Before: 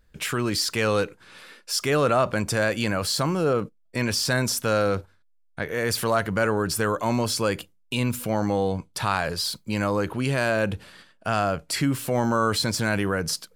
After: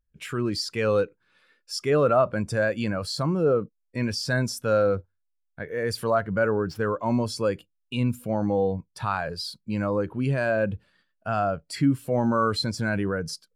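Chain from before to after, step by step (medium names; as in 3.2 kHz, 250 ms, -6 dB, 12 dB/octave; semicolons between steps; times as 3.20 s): 6.13–7.09 s: median filter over 5 samples; spectral contrast expander 1.5:1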